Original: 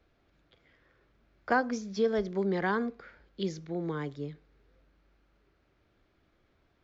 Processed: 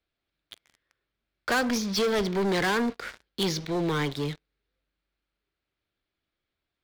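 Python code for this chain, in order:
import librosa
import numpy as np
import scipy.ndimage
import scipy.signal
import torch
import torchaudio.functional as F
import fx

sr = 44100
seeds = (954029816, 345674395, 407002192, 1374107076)

y = scipy.signal.sosfilt(scipy.signal.butter(2, 5700.0, 'lowpass', fs=sr, output='sos'), x)
y = fx.peak_eq(y, sr, hz=4000.0, db=13.0, octaves=2.1)
y = fx.leveller(y, sr, passes=5)
y = y * 10.0 ** (-8.5 / 20.0)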